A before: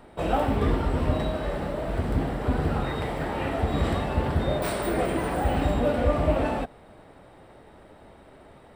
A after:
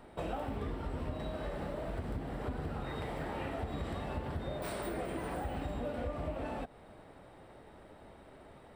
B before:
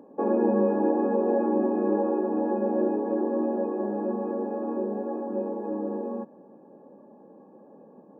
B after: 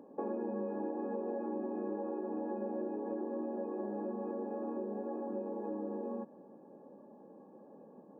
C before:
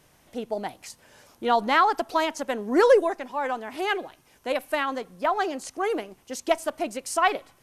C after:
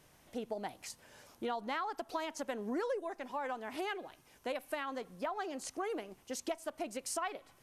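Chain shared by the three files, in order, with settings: compression 5:1, threshold -31 dBFS; trim -4.5 dB

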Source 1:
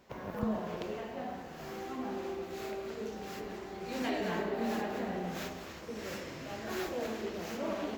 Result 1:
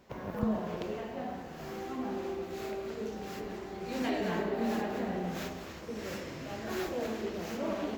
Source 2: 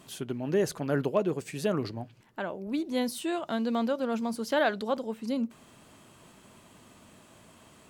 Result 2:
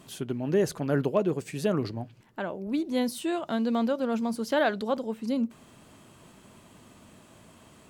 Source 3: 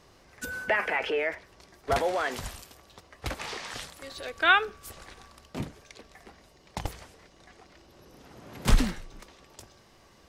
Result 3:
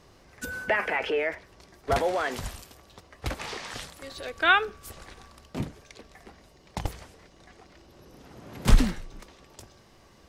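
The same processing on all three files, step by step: bass shelf 430 Hz +3.5 dB

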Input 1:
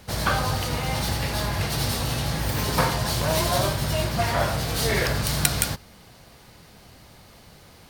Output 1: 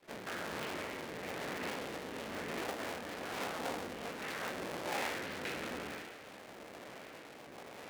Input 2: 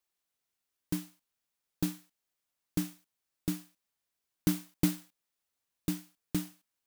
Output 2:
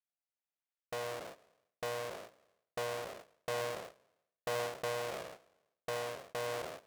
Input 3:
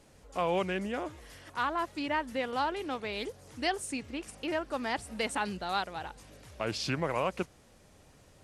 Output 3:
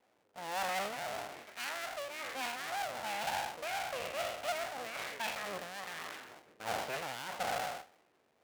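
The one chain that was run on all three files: spectral sustain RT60 1.01 s; gate -48 dBFS, range -12 dB; low-pass 2 kHz 24 dB/octave; reverse; compression 5:1, threshold -36 dBFS; reverse; resonant low shelf 520 Hz +10 dB, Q 3; rotary cabinet horn 1.1 Hz; full-wave rectifier; differentiator; trim +17 dB

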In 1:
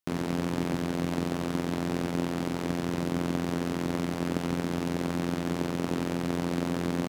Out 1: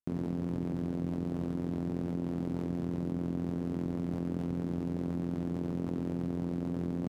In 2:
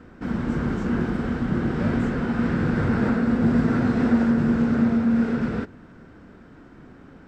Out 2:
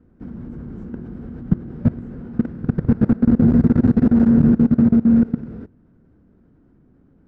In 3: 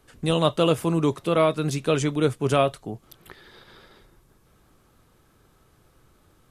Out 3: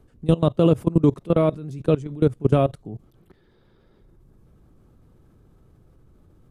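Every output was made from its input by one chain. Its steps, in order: level held to a coarse grid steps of 21 dB; tilt shelf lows +9.5 dB, about 650 Hz; trim +2 dB

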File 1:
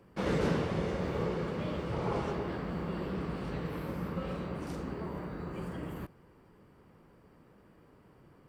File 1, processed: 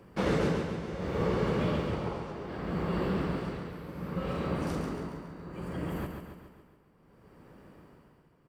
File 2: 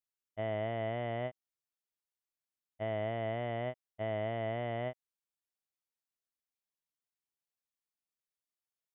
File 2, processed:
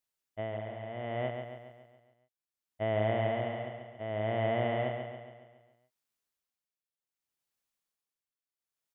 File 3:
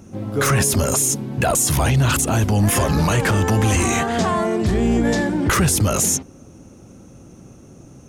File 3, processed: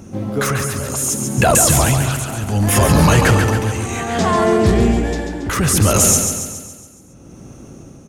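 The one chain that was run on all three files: tremolo 0.66 Hz, depth 80%; on a send: feedback delay 139 ms, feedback 53%, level -6 dB; on the sum: trim +5.5 dB

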